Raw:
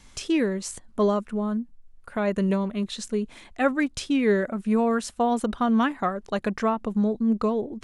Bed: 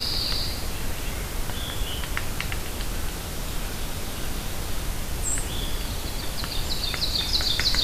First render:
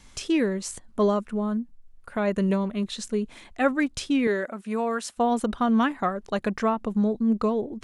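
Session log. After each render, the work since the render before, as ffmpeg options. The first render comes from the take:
-filter_complex "[0:a]asettb=1/sr,asplit=3[a][b][c];[a]atrim=end=4.274[d];[b]atrim=start=4.27:end=5.17,asetpts=PTS-STARTPTS,afade=t=in:d=0.004:c=qsin,afade=t=out:st=0.896:d=0.004:c=qsin,highpass=f=500:p=1[e];[c]atrim=start=5.166[f];[d][e]acrossfade=d=0.004:c1=hsin:c2=qsin[g];[g][f]acrossfade=d=0.004:c1=qsin:c2=hsin"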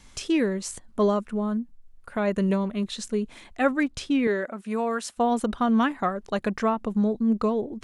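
-filter_complex "[0:a]asettb=1/sr,asplit=3[a][b][c];[a]atrim=end=3.834[d];[b]atrim=start=3.83:end=4.58,asetpts=PTS-STARTPTS,afade=t=in:d=0.004:c=qsin,afade=t=out:st=0.746:d=0.004:c=qsin,highshelf=f=5.7k:g=-7[e];[c]atrim=start=4.576[f];[d][e]acrossfade=d=0.004:c1=hsin:c2=qsin[g];[g][f]acrossfade=d=0.004:c1=qsin:c2=hsin"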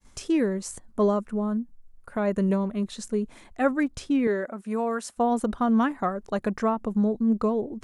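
-af "agate=range=-33dB:threshold=-47dB:ratio=3:detection=peak,equalizer=f=3.2k:t=o:w=1.6:g=-7.5"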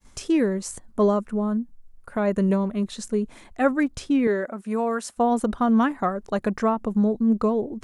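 -af "volume=2.5dB"

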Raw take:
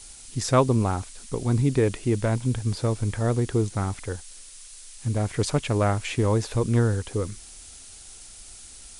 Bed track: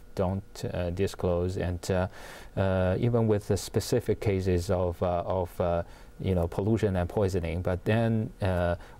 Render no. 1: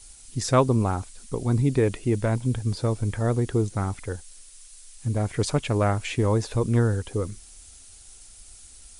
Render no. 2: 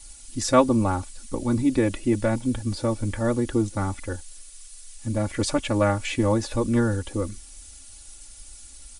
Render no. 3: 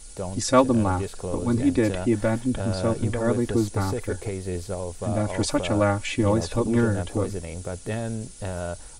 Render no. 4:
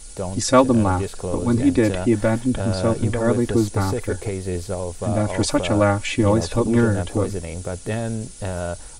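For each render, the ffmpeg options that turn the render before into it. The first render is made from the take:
-af "afftdn=nr=6:nf=-45"
-af "aecho=1:1:3.5:0.85"
-filter_complex "[1:a]volume=-4dB[a];[0:a][a]amix=inputs=2:normalize=0"
-af "volume=4dB,alimiter=limit=-1dB:level=0:latency=1"

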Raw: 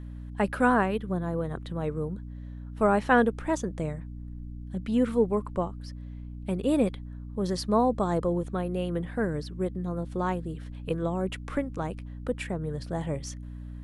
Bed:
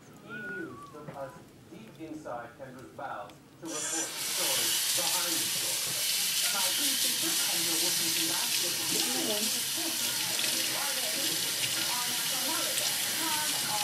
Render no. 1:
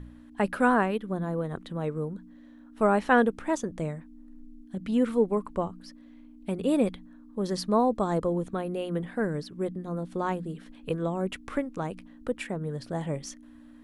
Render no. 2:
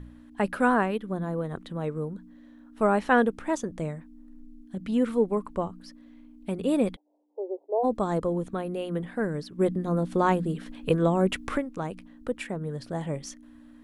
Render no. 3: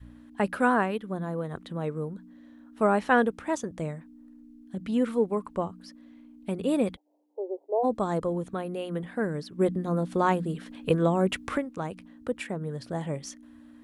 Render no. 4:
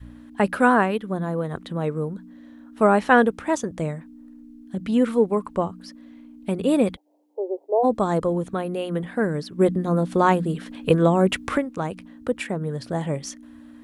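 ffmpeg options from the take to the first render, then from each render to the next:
-af "bandreject=f=60:t=h:w=4,bandreject=f=120:t=h:w=4,bandreject=f=180:t=h:w=4"
-filter_complex "[0:a]asplit=3[a][b][c];[a]afade=t=out:st=6.95:d=0.02[d];[b]asuperpass=centerf=550:order=12:qfactor=1.1,afade=t=in:st=6.95:d=0.02,afade=t=out:st=7.83:d=0.02[e];[c]afade=t=in:st=7.83:d=0.02[f];[d][e][f]amix=inputs=3:normalize=0,asplit=3[g][h][i];[g]afade=t=out:st=9.58:d=0.02[j];[h]acontrast=75,afade=t=in:st=9.58:d=0.02,afade=t=out:st=11.56:d=0.02[k];[i]afade=t=in:st=11.56:d=0.02[l];[j][k][l]amix=inputs=3:normalize=0"
-af "highpass=54,adynamicequalizer=threshold=0.0158:dfrequency=270:dqfactor=0.7:tfrequency=270:tqfactor=0.7:attack=5:release=100:ratio=0.375:range=1.5:mode=cutabove:tftype=bell"
-af "volume=6dB"

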